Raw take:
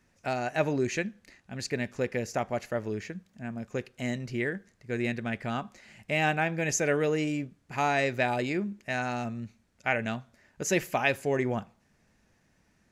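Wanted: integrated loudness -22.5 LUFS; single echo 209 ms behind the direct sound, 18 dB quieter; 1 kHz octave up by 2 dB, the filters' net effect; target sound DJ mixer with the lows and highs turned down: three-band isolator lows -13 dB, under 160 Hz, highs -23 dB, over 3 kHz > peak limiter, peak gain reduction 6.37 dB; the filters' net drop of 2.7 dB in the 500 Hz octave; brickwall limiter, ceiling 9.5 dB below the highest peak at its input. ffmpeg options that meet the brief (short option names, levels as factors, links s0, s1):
-filter_complex "[0:a]equalizer=f=500:t=o:g=-5,equalizer=f=1000:t=o:g=5.5,alimiter=limit=0.119:level=0:latency=1,acrossover=split=160 3000:gain=0.224 1 0.0708[s0][s1][s2];[s0][s1][s2]amix=inputs=3:normalize=0,aecho=1:1:209:0.126,volume=4.73,alimiter=limit=0.335:level=0:latency=1"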